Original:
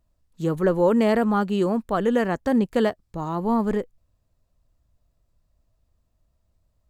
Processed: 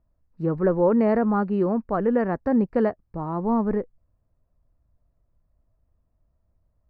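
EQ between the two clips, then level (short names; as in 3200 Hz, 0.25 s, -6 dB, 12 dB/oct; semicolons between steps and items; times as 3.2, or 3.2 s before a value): running mean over 13 samples; air absorption 97 m; 0.0 dB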